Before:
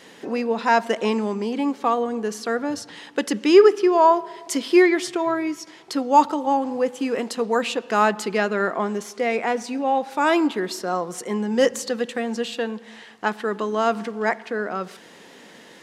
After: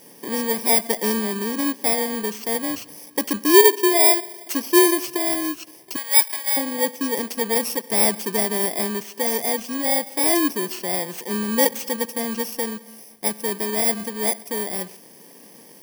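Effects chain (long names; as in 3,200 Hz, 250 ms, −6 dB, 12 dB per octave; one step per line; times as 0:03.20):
samples in bit-reversed order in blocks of 32 samples
0:05.96–0:06.57: high-pass filter 1,200 Hz 12 dB per octave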